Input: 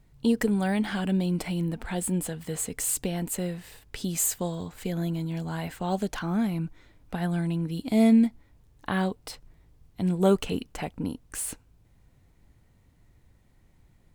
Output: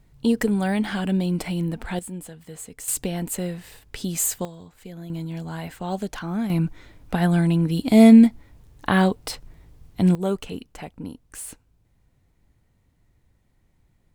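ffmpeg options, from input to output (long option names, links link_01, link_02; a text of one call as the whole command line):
ffmpeg -i in.wav -af "asetnsamples=nb_out_samples=441:pad=0,asendcmd='1.99 volume volume -7dB;2.88 volume volume 2.5dB;4.45 volume volume -8.5dB;5.1 volume volume 0dB;6.5 volume volume 8.5dB;10.15 volume volume -3.5dB',volume=3dB" out.wav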